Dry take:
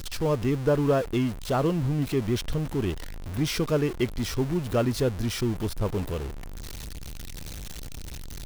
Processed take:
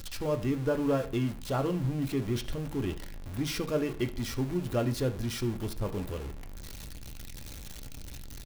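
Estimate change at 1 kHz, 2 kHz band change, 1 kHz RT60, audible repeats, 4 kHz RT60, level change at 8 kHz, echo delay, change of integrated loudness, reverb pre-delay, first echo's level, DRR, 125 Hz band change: −5.5 dB, −4.5 dB, 0.35 s, 1, 0.40 s, −4.5 dB, 72 ms, −5.0 dB, 3 ms, −18.5 dB, 6.0 dB, −5.0 dB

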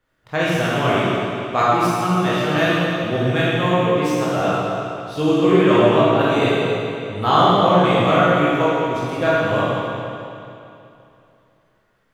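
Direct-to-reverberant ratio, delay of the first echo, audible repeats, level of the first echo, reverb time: −9.0 dB, no echo audible, no echo audible, no echo audible, 2.8 s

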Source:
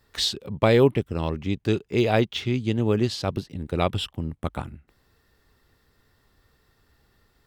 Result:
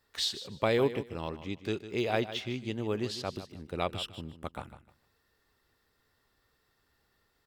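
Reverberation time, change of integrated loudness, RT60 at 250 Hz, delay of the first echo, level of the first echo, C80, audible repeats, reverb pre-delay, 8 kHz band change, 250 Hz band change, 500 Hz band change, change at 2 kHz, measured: no reverb audible, −9.0 dB, no reverb audible, 152 ms, −13.0 dB, no reverb audible, 2, no reverb audible, −6.5 dB, −10.5 dB, −8.5 dB, −6.5 dB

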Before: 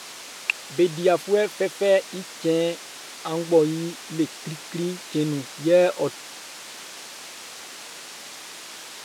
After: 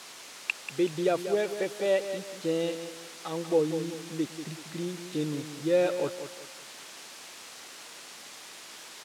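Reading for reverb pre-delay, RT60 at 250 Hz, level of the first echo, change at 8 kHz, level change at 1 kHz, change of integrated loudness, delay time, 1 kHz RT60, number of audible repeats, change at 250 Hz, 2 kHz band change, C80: no reverb audible, no reverb audible, −10.0 dB, −6.5 dB, −6.5 dB, −6.5 dB, 189 ms, no reverb audible, 3, −6.5 dB, −6.5 dB, no reverb audible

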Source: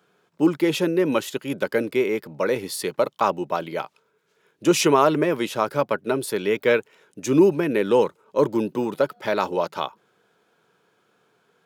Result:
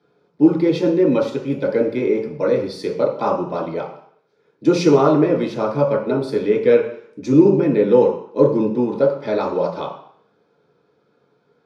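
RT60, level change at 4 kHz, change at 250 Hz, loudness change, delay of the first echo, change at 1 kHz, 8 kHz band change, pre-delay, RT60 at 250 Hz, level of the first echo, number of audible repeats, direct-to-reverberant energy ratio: 0.60 s, −4.5 dB, +5.5 dB, +4.5 dB, no echo audible, −0.5 dB, can't be measured, 3 ms, 0.55 s, no echo audible, no echo audible, −3.5 dB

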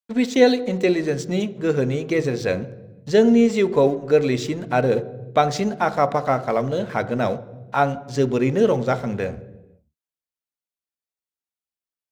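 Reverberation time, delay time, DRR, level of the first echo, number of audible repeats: 1.1 s, no echo audible, 11.5 dB, no echo audible, no echo audible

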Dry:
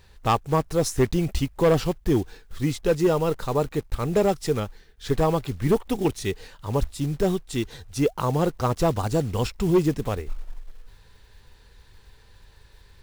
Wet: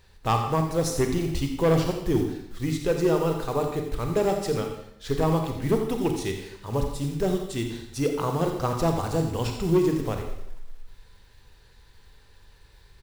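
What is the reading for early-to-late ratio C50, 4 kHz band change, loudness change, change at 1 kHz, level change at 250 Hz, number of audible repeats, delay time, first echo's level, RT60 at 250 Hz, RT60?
5.5 dB, −1.0 dB, −1.5 dB, −1.5 dB, −1.0 dB, 1, 86 ms, −11.0 dB, 0.70 s, 0.75 s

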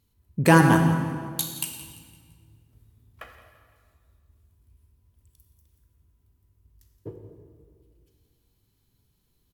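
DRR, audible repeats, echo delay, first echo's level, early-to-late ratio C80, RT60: 4.0 dB, 2, 170 ms, −16.5 dB, 6.0 dB, 1.9 s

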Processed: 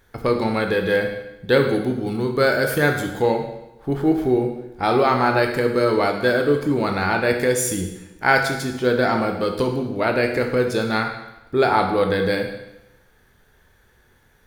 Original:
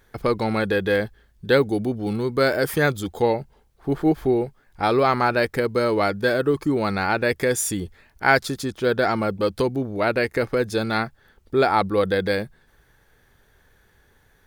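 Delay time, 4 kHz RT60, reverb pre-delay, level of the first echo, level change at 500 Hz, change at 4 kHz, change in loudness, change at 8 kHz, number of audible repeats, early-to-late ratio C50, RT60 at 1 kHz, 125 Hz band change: no echo audible, 0.90 s, 16 ms, no echo audible, +2.0 dB, +1.5 dB, +2.0 dB, +1.5 dB, no echo audible, 6.0 dB, 0.95 s, +1.5 dB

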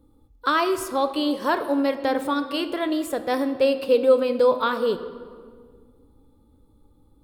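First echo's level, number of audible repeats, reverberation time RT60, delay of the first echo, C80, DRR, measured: no echo audible, no echo audible, 1.9 s, no echo audible, 12.5 dB, 9.0 dB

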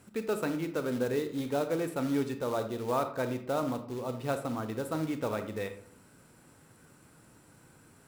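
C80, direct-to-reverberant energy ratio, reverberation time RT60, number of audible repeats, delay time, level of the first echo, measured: 14.0 dB, 8.0 dB, 0.60 s, no echo audible, no echo audible, no echo audible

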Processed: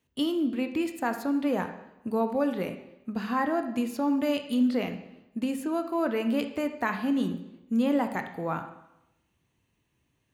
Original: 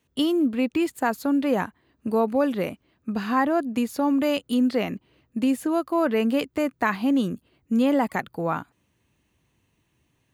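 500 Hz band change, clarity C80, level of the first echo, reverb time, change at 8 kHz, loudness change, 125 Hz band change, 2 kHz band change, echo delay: −5.0 dB, 12.0 dB, no echo audible, 0.90 s, −5.5 dB, −4.5 dB, −4.0 dB, −4.5 dB, no echo audible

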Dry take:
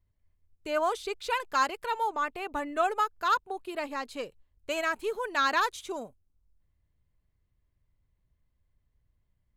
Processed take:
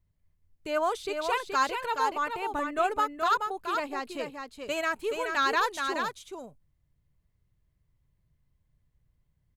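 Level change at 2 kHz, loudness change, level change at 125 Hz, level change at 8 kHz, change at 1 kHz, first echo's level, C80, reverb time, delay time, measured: +1.0 dB, +1.0 dB, can't be measured, +1.0 dB, +1.0 dB, −5.5 dB, no reverb audible, no reverb audible, 425 ms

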